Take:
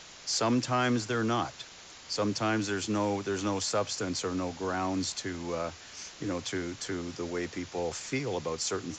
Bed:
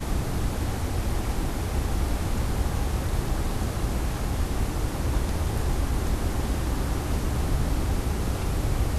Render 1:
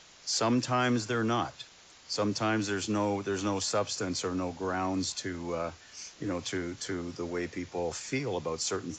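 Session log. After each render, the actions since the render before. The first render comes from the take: noise print and reduce 6 dB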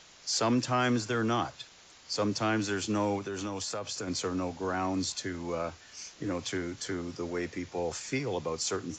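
3.18–4.08 compressor 5:1, threshold -32 dBFS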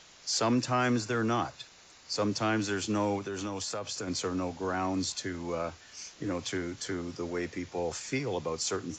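0.45–2.21 notch 3200 Hz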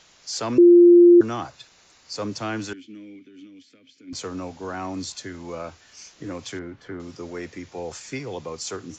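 0.58–1.21 bleep 348 Hz -7.5 dBFS; 2.73–4.13 vowel filter i; 6.59–7 LPF 1900 Hz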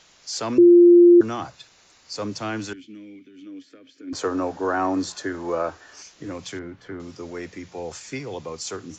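3.46–6.02 spectral gain 270–1900 Hz +9 dB; notches 60/120/180 Hz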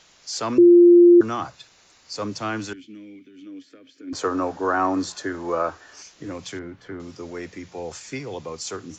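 dynamic EQ 1200 Hz, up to +5 dB, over -38 dBFS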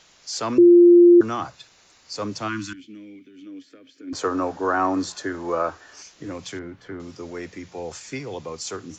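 2.48–2.79 spectral gain 360–950 Hz -25 dB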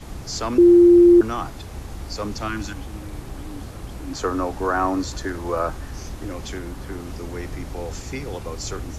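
add bed -8 dB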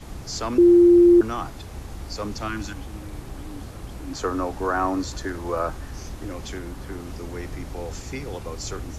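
gain -2 dB

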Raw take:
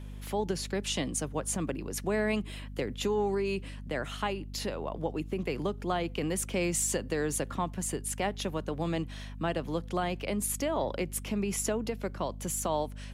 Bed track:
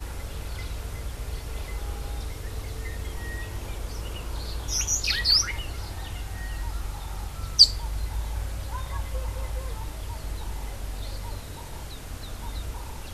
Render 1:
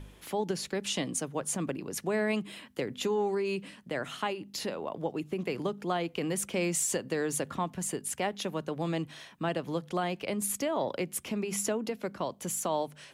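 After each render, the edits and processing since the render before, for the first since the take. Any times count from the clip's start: de-hum 50 Hz, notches 5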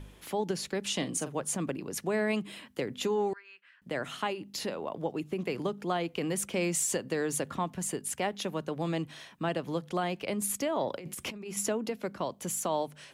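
0.96–1.41 doubler 41 ms -11 dB; 3.33–3.82 ladder band-pass 1700 Hz, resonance 65%; 10.93–11.57 negative-ratio compressor -40 dBFS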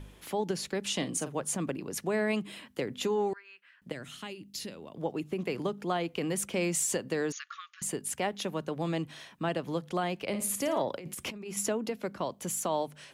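3.92–4.97 bell 840 Hz -14.5 dB 2.5 oct; 7.32–7.82 brick-wall FIR band-pass 1100–6900 Hz; 10.25–10.82 flutter echo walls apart 9.5 m, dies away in 0.4 s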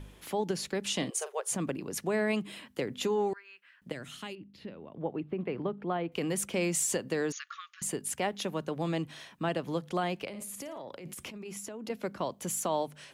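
1.1–1.52 brick-wall FIR high-pass 360 Hz; 4.35–6.12 air absorption 460 m; 10.27–11.9 compressor 8:1, threshold -38 dBFS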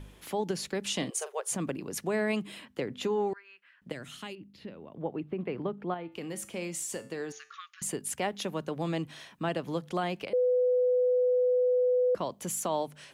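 2.65–3.9 high shelf 5900 Hz -10 dB; 5.94–7.54 resonator 110 Hz, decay 0.45 s; 10.33–12.15 bleep 499 Hz -22 dBFS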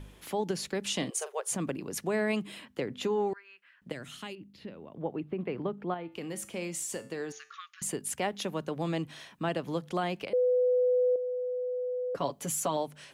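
11.15–12.77 comb 7.1 ms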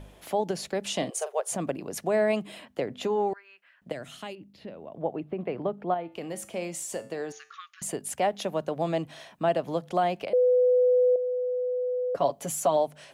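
bell 660 Hz +11 dB 0.65 oct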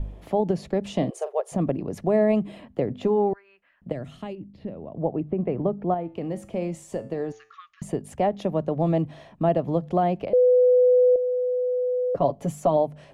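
tilt -4 dB/oct; notch 1500 Hz, Q 12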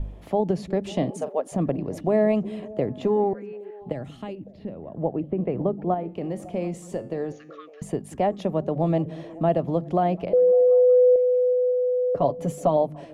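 delay with a stepping band-pass 0.185 s, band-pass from 210 Hz, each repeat 0.7 oct, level -12 dB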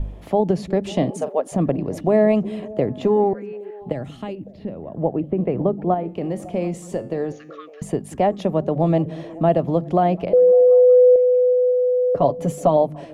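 gain +4.5 dB

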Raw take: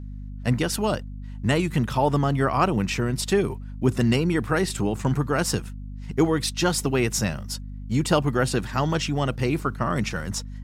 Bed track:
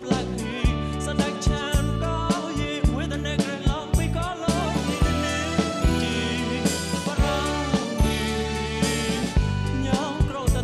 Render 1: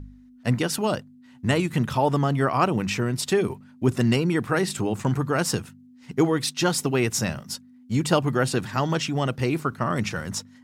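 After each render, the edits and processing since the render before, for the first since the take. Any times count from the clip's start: de-hum 50 Hz, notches 4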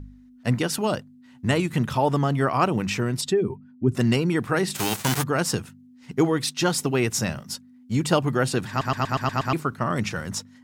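3.21–3.95 spectral contrast raised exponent 1.5; 4.74–5.22 spectral whitening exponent 0.3; 8.69 stutter in place 0.12 s, 7 plays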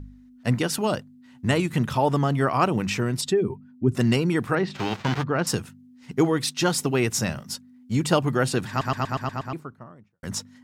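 4.55–5.47 air absorption 220 m; 8.68–10.23 studio fade out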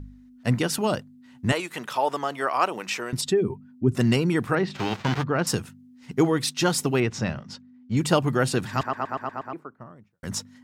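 1.52–3.13 HPF 510 Hz; 7–7.97 air absorption 160 m; 8.83–9.8 three-band isolator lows -16 dB, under 260 Hz, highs -15 dB, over 2100 Hz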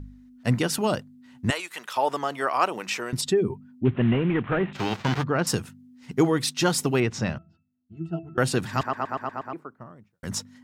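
1.5–1.97 HPF 1100 Hz 6 dB/oct; 3.85–4.73 CVSD 16 kbps; 7.38–8.38 octave resonator E, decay 0.25 s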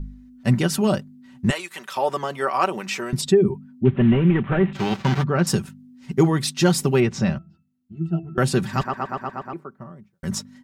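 low shelf 250 Hz +8 dB; comb 5.2 ms, depth 54%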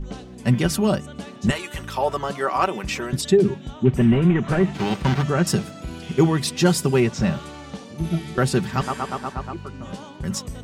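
add bed track -12.5 dB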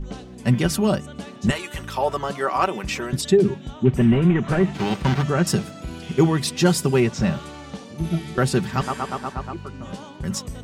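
nothing audible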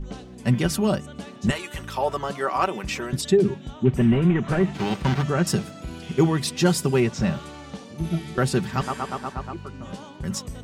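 gain -2 dB

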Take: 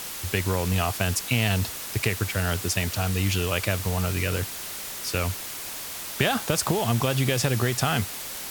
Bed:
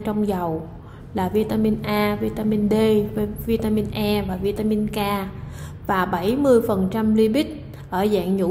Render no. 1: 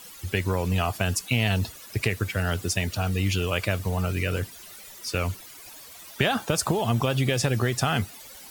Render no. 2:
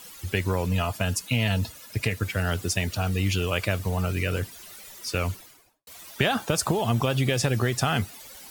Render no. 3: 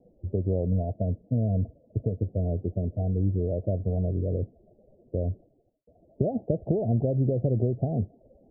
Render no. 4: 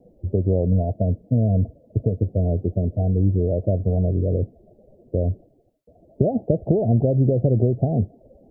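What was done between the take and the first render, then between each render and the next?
denoiser 14 dB, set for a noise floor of -36 dBFS
0.66–2.23 notch comb 380 Hz; 5.29–5.87 studio fade out
steep low-pass 670 Hz 72 dB/oct
gain +6.5 dB

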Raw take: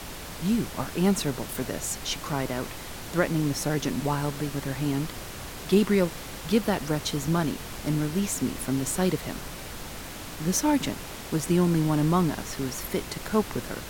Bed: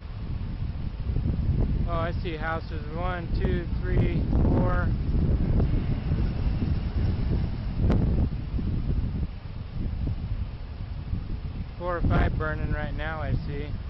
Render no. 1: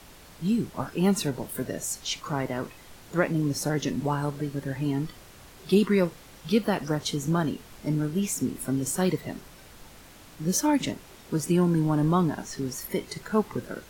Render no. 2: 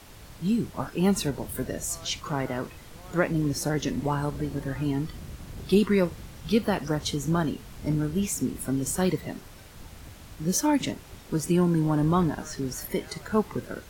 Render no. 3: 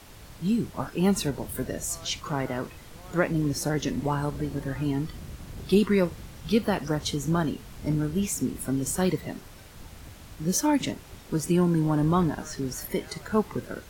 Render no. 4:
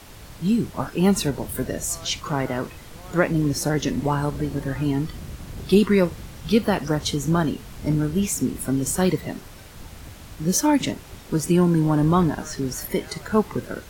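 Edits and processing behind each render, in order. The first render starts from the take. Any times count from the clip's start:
noise print and reduce 11 dB
add bed -17.5 dB
nothing audible
gain +4.5 dB

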